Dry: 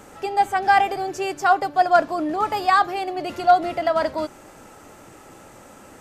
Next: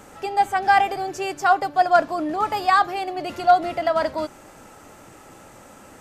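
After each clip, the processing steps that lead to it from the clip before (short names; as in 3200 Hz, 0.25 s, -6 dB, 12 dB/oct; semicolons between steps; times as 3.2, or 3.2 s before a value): bell 380 Hz -2 dB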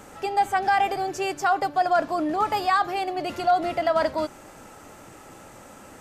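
limiter -12.5 dBFS, peak gain reduction 7 dB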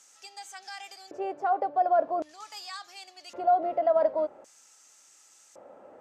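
LFO band-pass square 0.45 Hz 570–6200 Hz; de-hum 75.21 Hz, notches 2; gain +1.5 dB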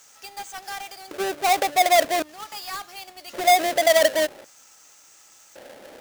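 half-waves squared off; gain +3 dB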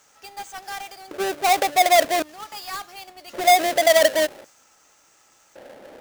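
mismatched tape noise reduction decoder only; gain +1.5 dB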